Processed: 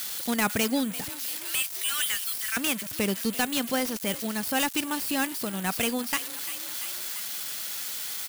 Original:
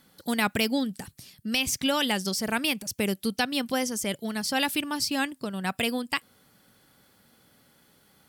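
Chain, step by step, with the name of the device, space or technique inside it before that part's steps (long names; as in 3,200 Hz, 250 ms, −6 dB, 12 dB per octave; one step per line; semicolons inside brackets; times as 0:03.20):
0:01.10–0:02.57: Butterworth high-pass 1,300 Hz 36 dB per octave
echo with shifted repeats 343 ms, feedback 49%, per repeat +36 Hz, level −22 dB
budget class-D amplifier (gap after every zero crossing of 0.093 ms; spike at every zero crossing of −19 dBFS)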